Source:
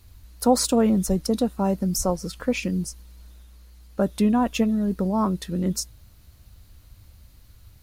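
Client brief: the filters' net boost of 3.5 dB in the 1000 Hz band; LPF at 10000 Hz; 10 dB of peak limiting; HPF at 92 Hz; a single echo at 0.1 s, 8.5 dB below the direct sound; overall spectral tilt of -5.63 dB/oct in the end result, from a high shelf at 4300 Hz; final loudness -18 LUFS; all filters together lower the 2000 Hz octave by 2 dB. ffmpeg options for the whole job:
-af "highpass=92,lowpass=10k,equalizer=f=1k:t=o:g=5.5,equalizer=f=2k:t=o:g=-3,highshelf=f=4.3k:g=-4.5,alimiter=limit=-15.5dB:level=0:latency=1,aecho=1:1:100:0.376,volume=7.5dB"

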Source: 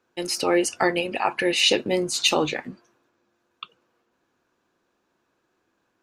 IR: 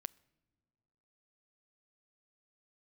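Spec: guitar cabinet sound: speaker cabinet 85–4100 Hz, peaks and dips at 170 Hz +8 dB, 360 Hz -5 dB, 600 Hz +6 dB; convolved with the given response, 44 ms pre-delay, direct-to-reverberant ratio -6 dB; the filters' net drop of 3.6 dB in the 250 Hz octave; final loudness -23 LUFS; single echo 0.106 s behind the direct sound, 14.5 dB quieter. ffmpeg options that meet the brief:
-filter_complex "[0:a]equalizer=f=250:t=o:g=-3.5,aecho=1:1:106:0.188,asplit=2[a][b];[1:a]atrim=start_sample=2205,adelay=44[c];[b][c]afir=irnorm=-1:irlink=0,volume=10dB[d];[a][d]amix=inputs=2:normalize=0,highpass=85,equalizer=f=170:t=q:w=4:g=8,equalizer=f=360:t=q:w=4:g=-5,equalizer=f=600:t=q:w=4:g=6,lowpass=f=4.1k:w=0.5412,lowpass=f=4.1k:w=1.3066,volume=-7dB"

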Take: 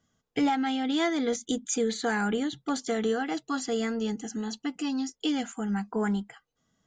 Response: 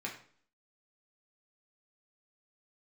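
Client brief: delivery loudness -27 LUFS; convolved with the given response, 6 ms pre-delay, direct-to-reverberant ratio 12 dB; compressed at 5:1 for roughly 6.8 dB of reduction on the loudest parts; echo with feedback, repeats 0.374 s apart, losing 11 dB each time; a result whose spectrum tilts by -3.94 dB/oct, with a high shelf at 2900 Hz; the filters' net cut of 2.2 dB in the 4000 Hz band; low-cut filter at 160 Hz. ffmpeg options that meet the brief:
-filter_complex "[0:a]highpass=160,highshelf=f=2.9k:g=4,equalizer=f=4k:t=o:g=-6,acompressor=threshold=-30dB:ratio=5,aecho=1:1:374|748|1122:0.282|0.0789|0.0221,asplit=2[a][b];[1:a]atrim=start_sample=2205,adelay=6[c];[b][c]afir=irnorm=-1:irlink=0,volume=-13.5dB[d];[a][d]amix=inputs=2:normalize=0,volume=6.5dB"

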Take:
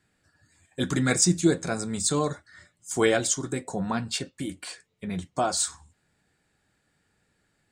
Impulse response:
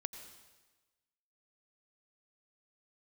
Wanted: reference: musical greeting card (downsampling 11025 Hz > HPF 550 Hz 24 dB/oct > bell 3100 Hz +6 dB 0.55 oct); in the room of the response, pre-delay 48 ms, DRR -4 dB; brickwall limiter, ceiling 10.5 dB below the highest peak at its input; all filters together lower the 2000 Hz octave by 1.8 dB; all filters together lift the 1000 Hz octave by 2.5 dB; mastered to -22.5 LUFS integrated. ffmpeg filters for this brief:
-filter_complex "[0:a]equalizer=f=1k:t=o:g=5,equalizer=f=2k:t=o:g=-5.5,alimiter=limit=-16.5dB:level=0:latency=1,asplit=2[a][b];[1:a]atrim=start_sample=2205,adelay=48[c];[b][c]afir=irnorm=-1:irlink=0,volume=5.5dB[d];[a][d]amix=inputs=2:normalize=0,aresample=11025,aresample=44100,highpass=f=550:w=0.5412,highpass=f=550:w=1.3066,equalizer=f=3.1k:t=o:w=0.55:g=6,volume=7dB"

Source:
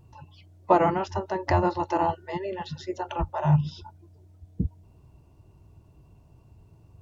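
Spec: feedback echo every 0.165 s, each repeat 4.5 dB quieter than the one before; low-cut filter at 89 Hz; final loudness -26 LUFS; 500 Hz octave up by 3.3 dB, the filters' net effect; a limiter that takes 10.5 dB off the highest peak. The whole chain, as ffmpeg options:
-af "highpass=89,equalizer=f=500:t=o:g=4.5,alimiter=limit=-14dB:level=0:latency=1,aecho=1:1:165|330|495|660|825|990|1155|1320|1485:0.596|0.357|0.214|0.129|0.0772|0.0463|0.0278|0.0167|0.01,volume=0.5dB"

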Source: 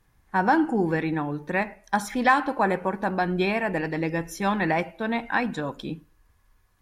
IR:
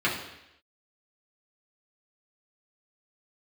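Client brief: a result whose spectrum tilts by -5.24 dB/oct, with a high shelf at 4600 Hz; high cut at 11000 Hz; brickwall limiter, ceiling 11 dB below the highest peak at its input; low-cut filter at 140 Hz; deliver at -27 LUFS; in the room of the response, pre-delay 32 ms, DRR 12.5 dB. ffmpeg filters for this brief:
-filter_complex "[0:a]highpass=140,lowpass=11k,highshelf=f=4.6k:g=-6,alimiter=limit=-19dB:level=0:latency=1,asplit=2[a][b];[1:a]atrim=start_sample=2205,adelay=32[c];[b][c]afir=irnorm=-1:irlink=0,volume=-26dB[d];[a][d]amix=inputs=2:normalize=0,volume=2.5dB"

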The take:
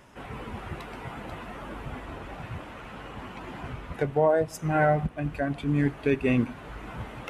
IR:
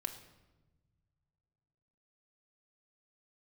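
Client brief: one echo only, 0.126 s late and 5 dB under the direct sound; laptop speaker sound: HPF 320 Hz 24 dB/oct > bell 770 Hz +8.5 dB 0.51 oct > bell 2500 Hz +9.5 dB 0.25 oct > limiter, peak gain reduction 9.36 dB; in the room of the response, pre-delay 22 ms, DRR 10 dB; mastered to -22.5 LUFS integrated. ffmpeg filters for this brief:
-filter_complex "[0:a]aecho=1:1:126:0.562,asplit=2[a][b];[1:a]atrim=start_sample=2205,adelay=22[c];[b][c]afir=irnorm=-1:irlink=0,volume=-9.5dB[d];[a][d]amix=inputs=2:normalize=0,highpass=f=320:w=0.5412,highpass=f=320:w=1.3066,equalizer=f=770:t=o:w=0.51:g=8.5,equalizer=f=2.5k:t=o:w=0.25:g=9.5,volume=8dB,alimiter=limit=-8.5dB:level=0:latency=1"

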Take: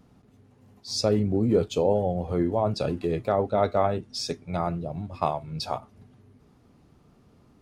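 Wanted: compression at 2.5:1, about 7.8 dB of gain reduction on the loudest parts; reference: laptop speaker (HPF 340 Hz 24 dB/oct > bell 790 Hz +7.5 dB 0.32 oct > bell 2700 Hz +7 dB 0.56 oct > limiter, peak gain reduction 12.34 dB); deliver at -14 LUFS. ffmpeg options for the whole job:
-af "acompressor=threshold=-29dB:ratio=2.5,highpass=f=340:w=0.5412,highpass=f=340:w=1.3066,equalizer=f=790:t=o:w=0.32:g=7.5,equalizer=f=2.7k:t=o:w=0.56:g=7,volume=22dB,alimiter=limit=-2.5dB:level=0:latency=1"

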